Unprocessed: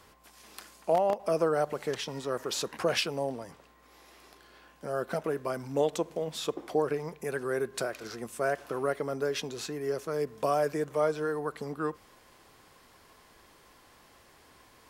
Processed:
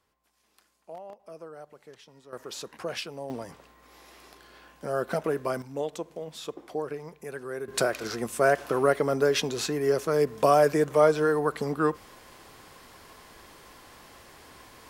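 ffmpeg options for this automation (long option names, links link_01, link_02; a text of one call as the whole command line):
ffmpeg -i in.wav -af "asetnsamples=nb_out_samples=441:pad=0,asendcmd='2.33 volume volume -6dB;3.3 volume volume 3.5dB;5.62 volume volume -4.5dB;7.68 volume volume 7.5dB',volume=-17dB" out.wav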